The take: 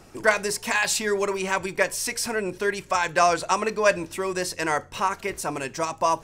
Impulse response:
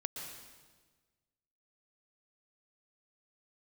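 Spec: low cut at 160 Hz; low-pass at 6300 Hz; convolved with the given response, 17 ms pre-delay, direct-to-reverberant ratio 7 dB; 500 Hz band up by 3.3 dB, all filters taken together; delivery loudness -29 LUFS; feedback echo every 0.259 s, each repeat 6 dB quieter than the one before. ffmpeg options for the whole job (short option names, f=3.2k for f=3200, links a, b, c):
-filter_complex "[0:a]highpass=160,lowpass=6.3k,equalizer=f=500:t=o:g=4.5,aecho=1:1:259|518|777|1036|1295|1554:0.501|0.251|0.125|0.0626|0.0313|0.0157,asplit=2[a][b];[1:a]atrim=start_sample=2205,adelay=17[c];[b][c]afir=irnorm=-1:irlink=0,volume=-7dB[d];[a][d]amix=inputs=2:normalize=0,volume=-7.5dB"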